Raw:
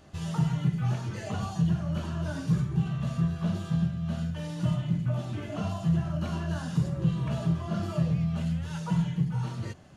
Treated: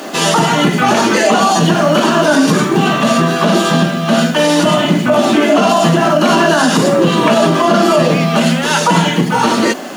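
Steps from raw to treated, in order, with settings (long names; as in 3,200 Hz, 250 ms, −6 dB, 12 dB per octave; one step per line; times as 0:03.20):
Chebyshev high-pass filter 240 Hz, order 4
bit-depth reduction 12 bits, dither none
boost into a limiter +33 dB
level −1 dB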